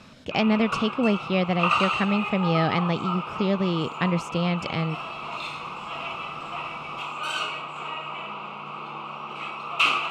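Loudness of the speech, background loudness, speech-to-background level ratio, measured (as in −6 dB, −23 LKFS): −25.5 LKFS, −30.0 LKFS, 4.5 dB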